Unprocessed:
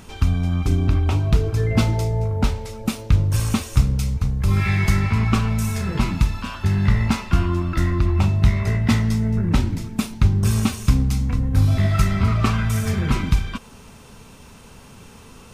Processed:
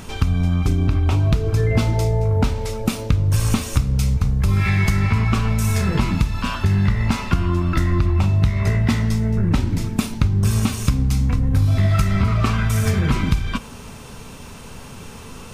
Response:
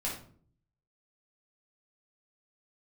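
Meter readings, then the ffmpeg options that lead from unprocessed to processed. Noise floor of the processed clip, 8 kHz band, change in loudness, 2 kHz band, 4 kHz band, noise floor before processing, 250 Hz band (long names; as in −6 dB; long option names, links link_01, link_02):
−37 dBFS, +2.0 dB, +1.0 dB, +1.5 dB, +1.5 dB, −44 dBFS, +0.5 dB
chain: -filter_complex "[0:a]acompressor=threshold=-21dB:ratio=6,asplit=2[link_01][link_02];[1:a]atrim=start_sample=2205[link_03];[link_02][link_03]afir=irnorm=-1:irlink=0,volume=-19.5dB[link_04];[link_01][link_04]amix=inputs=2:normalize=0,volume=6dB"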